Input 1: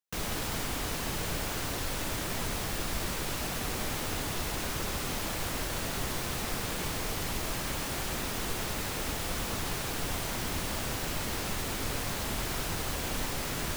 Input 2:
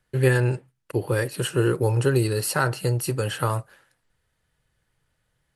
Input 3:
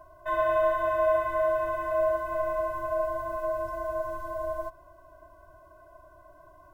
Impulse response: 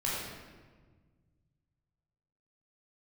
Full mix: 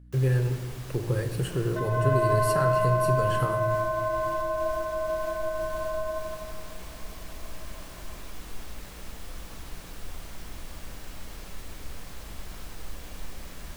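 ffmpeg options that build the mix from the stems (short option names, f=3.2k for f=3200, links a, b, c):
-filter_complex "[0:a]asubboost=boost=3.5:cutoff=56,aeval=exprs='val(0)+0.0141*(sin(2*PI*60*n/s)+sin(2*PI*2*60*n/s)/2+sin(2*PI*3*60*n/s)/3+sin(2*PI*4*60*n/s)/4+sin(2*PI*5*60*n/s)/5)':c=same,volume=-13.5dB,asplit=2[a][b];[b]volume=-12.5dB[c];[1:a]lowshelf=f=430:g=9.5,acompressor=threshold=-20dB:ratio=2.5,volume=-9dB,asplit=2[d][e];[e]volume=-11.5dB[f];[2:a]adelay=1500,volume=-1dB,asplit=2[g][h];[h]volume=-6dB[i];[a][g]amix=inputs=2:normalize=0,alimiter=level_in=2dB:limit=-24dB:level=0:latency=1:release=144,volume=-2dB,volume=0dB[j];[3:a]atrim=start_sample=2205[k];[c][f]amix=inputs=2:normalize=0[l];[l][k]afir=irnorm=-1:irlink=0[m];[i]aecho=0:1:163|326|489|652|815|978|1141|1304:1|0.56|0.314|0.176|0.0983|0.0551|0.0308|0.0173[n];[d][j][m][n]amix=inputs=4:normalize=0"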